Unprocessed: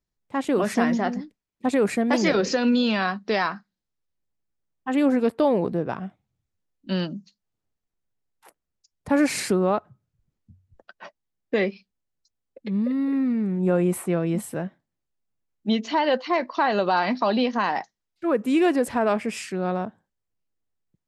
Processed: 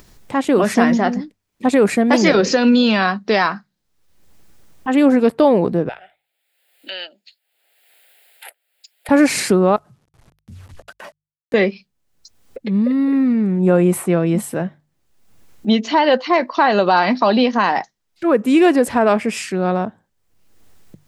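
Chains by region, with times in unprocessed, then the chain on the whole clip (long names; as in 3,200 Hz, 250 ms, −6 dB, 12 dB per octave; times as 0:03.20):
0:05.89–0:09.09: high-pass filter 660 Hz 24 dB per octave + phaser with its sweep stopped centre 2,600 Hz, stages 4
0:09.76–0:11.54: variable-slope delta modulation 64 kbit/s + transient designer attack −10 dB, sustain +4 dB + downward compressor 2 to 1, threshold −57 dBFS
whole clip: mains-hum notches 50/100/150 Hz; upward compression, threshold −33 dBFS; level +7.5 dB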